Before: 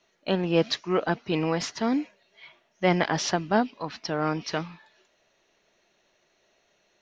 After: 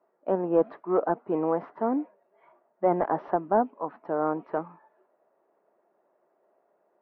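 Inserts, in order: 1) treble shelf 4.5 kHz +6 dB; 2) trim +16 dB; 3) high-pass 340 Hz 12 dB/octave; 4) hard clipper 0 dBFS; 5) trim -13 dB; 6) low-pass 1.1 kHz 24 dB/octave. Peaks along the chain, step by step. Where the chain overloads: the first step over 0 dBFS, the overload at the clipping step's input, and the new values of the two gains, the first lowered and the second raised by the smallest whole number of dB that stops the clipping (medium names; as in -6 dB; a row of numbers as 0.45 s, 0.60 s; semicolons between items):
-8.0 dBFS, +8.0 dBFS, +8.5 dBFS, 0.0 dBFS, -13.0 dBFS, -12.0 dBFS; step 2, 8.5 dB; step 2 +7 dB, step 5 -4 dB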